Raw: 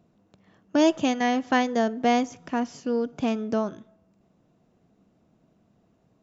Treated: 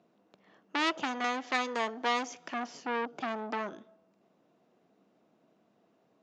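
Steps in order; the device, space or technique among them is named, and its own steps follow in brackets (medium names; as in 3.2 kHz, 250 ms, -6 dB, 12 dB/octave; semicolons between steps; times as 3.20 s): 1.24–2.54 s: tilt EQ +2 dB/octave; public-address speaker with an overloaded transformer (transformer saturation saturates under 3.8 kHz; band-pass 310–5300 Hz)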